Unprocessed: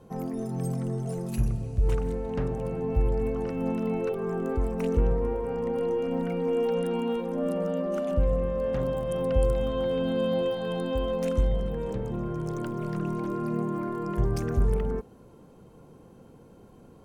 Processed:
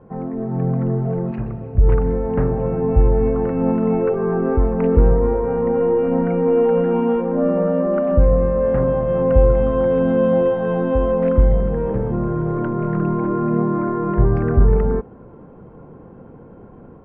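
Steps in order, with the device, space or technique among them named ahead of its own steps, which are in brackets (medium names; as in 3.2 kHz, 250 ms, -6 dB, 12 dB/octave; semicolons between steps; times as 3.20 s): 1.31–1.75 s: high-pass 320 Hz 6 dB/octave; action camera in a waterproof case (low-pass 1.9 kHz 24 dB/octave; level rider gain up to 5 dB; trim +5.5 dB; AAC 64 kbps 16 kHz)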